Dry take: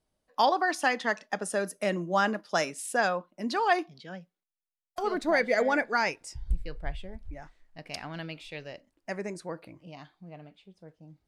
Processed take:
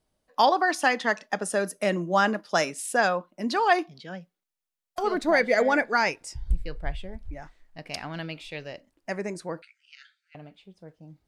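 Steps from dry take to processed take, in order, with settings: 9.62–10.35 s: brick-wall FIR band-pass 1.3–9.4 kHz; trim +3.5 dB

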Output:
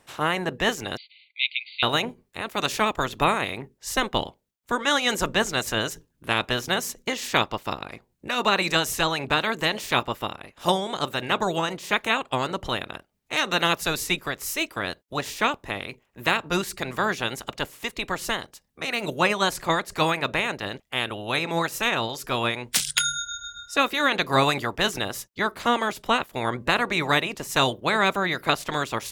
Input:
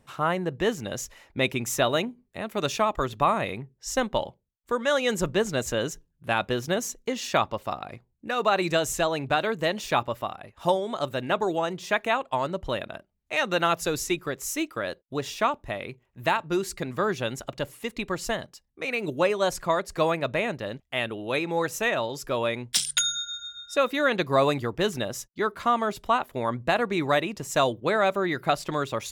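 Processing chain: spectral peaks clipped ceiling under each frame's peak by 16 dB; 0.97–1.83 s: brick-wall FIR band-pass 2–4.7 kHz; trim +1.5 dB

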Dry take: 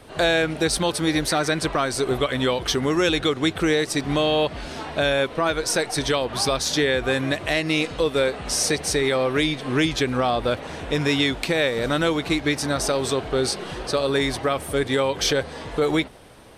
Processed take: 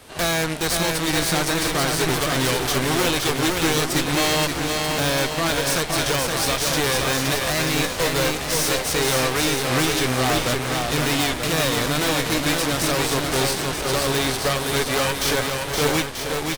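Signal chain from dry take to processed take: formants flattened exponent 0.6; Chebyshev shaper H 6 -9 dB, 8 -8 dB, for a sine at -4.5 dBFS; wavefolder -14.5 dBFS; on a send: bouncing-ball echo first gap 520 ms, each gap 0.8×, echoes 5

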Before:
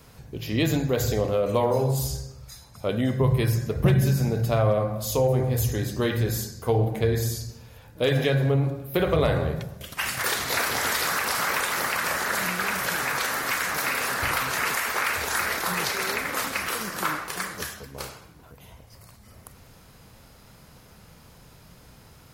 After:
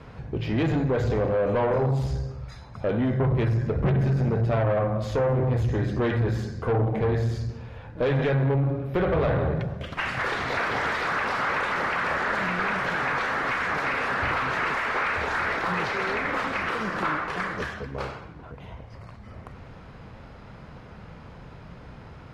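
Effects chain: in parallel at +1 dB: compression, threshold -30 dBFS, peak gain reduction 14 dB; on the sum: valve stage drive 21 dB, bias 0.3; low-pass 2.2 kHz 12 dB/octave; trim +2 dB

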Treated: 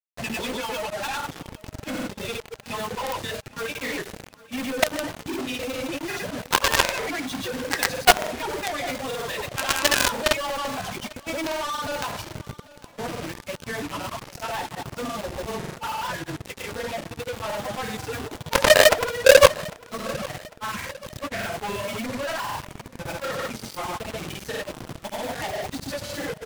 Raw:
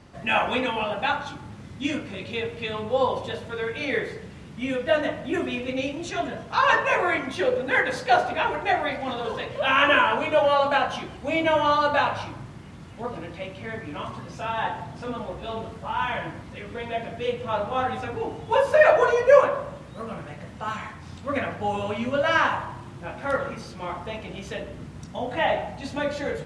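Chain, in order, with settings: reverb removal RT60 1.9 s; companded quantiser 2-bit; granulator, pitch spread up and down by 0 st; on a send: feedback delay 800 ms, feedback 44%, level -21 dB; on the sum: trim -2 dB

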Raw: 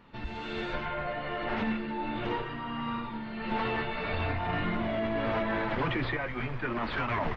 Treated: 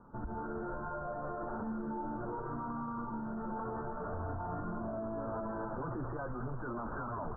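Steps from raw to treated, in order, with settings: steep low-pass 1.5 kHz 96 dB/octave; peak limiter -31.5 dBFS, peak gain reduction 10.5 dB

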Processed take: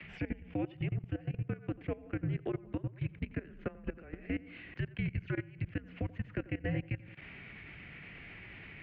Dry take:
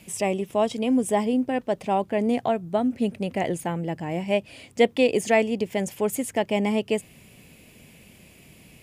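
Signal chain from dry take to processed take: peaking EQ 110 Hz -11 dB 0.27 oct; hum notches 50/100/150/200/250 Hz; mistuned SSB -350 Hz 210–3200 Hz; peak limiter -16.5 dBFS, peak gain reduction 9.5 dB; compression 6:1, threshold -37 dBFS, peak gain reduction 16 dB; frequency shift +25 Hz; on a send: tape echo 87 ms, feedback 51%, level -6.5 dB, low-pass 1.6 kHz; on the sum: level held to a coarse grid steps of 19 dB; tape noise reduction on one side only encoder only; trim +5.5 dB

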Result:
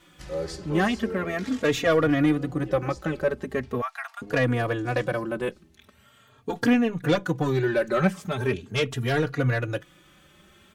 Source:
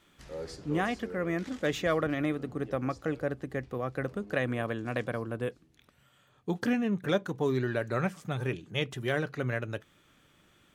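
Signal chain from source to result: 3.81–4.22 s: steep high-pass 740 Hz 72 dB/octave; sine folder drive 5 dB, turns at -14 dBFS; endless flanger 3.6 ms +0.41 Hz; trim +2 dB

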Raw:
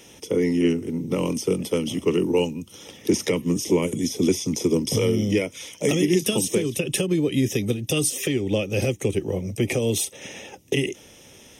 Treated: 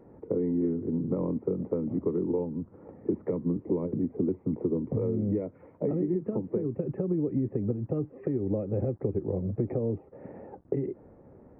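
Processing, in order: compression 6:1, threshold -24 dBFS, peak gain reduction 9.5 dB; bit crusher 9-bit; Gaussian low-pass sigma 8.2 samples

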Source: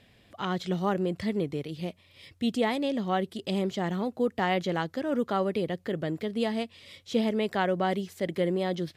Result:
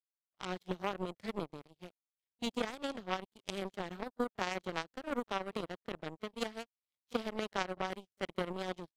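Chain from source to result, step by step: pre-echo 33 ms -12.5 dB; power-law waveshaper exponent 3; compression 6:1, threshold -40 dBFS, peak gain reduction 12.5 dB; trim +9.5 dB

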